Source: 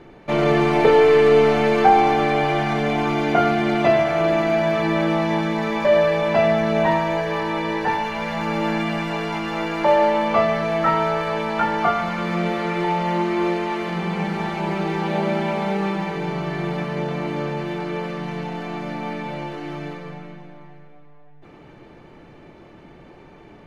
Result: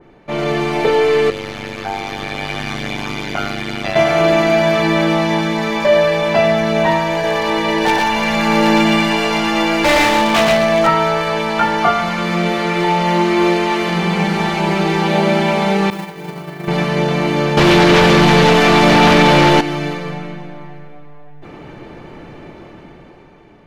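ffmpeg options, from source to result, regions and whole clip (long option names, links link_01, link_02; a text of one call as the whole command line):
ffmpeg -i in.wav -filter_complex "[0:a]asettb=1/sr,asplit=3[link_01][link_02][link_03];[link_01]atrim=end=1.304[link_04];[link_02]atrim=start=1.3:end=3.96,asetpts=PTS-STARTPTS,afade=type=in:duration=0.004:curve=qsin,afade=type=out:start_time=2.656:duration=0.004:curve=qsin,equalizer=frequency=520:width=0.51:gain=-11,tremolo=f=100:d=1[link_05];[link_03]atrim=start=3.956[link_06];[link_04][link_05]acrossfade=duration=0.004:curve1=hsin:curve2=qsin[link_07];[link_07][link_06]acrossfade=duration=0.004:curve1=qsin:curve2=hsin,asettb=1/sr,asplit=3[link_08][link_09][link_10];[link_08]atrim=end=7.124[link_11];[link_09]atrim=start=7.12:end=10.87,asetpts=PTS-STARTPTS,afade=type=in:duration=0.004:curve=qsin,afade=type=out:start_time=3.746:duration=0.004:curve=qsin,bandreject=frequency=1300:width=24,aeval=exprs='0.188*(abs(mod(val(0)/0.188+3,4)-2)-1)':channel_layout=same,aecho=1:1:118:0.708,atrim=end_sample=165375[link_12];[link_10]atrim=start=10.866[link_13];[link_11][link_12]acrossfade=duration=0.004:curve1=hsin:curve2=qsin[link_14];[link_14][link_13]acrossfade=duration=0.004:curve1=qsin:curve2=hsin,asettb=1/sr,asplit=3[link_15][link_16][link_17];[link_15]atrim=end=15.904[link_18];[link_16]atrim=start=15.9:end=16.68,asetpts=PTS-STARTPTS,afade=type=in:duration=0.004:curve=qsin,afade=type=out:start_time=0.776:duration=0.004:curve=qsin,highpass=64,agate=range=-33dB:threshold=-18dB:ratio=3:release=100:detection=peak,acrusher=bits=6:mode=log:mix=0:aa=0.000001[link_19];[link_17]atrim=start=16.676[link_20];[link_18][link_19]acrossfade=duration=0.004:curve1=hsin:curve2=qsin[link_21];[link_21][link_20]acrossfade=duration=0.004:curve1=qsin:curve2=hsin,asettb=1/sr,asplit=3[link_22][link_23][link_24];[link_22]atrim=end=17.574[link_25];[link_23]atrim=start=17.57:end=19.61,asetpts=PTS-STARTPTS,afade=type=in:duration=0.004:curve=qsin,afade=type=out:start_time=2.036:duration=0.004:curve=qsin,aecho=1:1:521:0.355,atrim=end_sample=89964,aeval=exprs='0.158*sin(PI/2*2.51*val(0)/0.158)':channel_layout=same[link_26];[link_24]atrim=start=19.606[link_27];[link_25][link_26]acrossfade=duration=0.004:curve1=hsin:curve2=qsin[link_28];[link_28][link_27]acrossfade=duration=0.004:curve1=qsin:curve2=hsin,dynaudnorm=framelen=170:gausssize=13:maxgain=11.5dB,adynamicequalizer=threshold=0.0251:dfrequency=2600:dqfactor=0.7:tfrequency=2600:tqfactor=0.7:attack=5:release=100:ratio=0.375:range=3.5:mode=boostabove:tftype=highshelf,volume=-1dB" out.wav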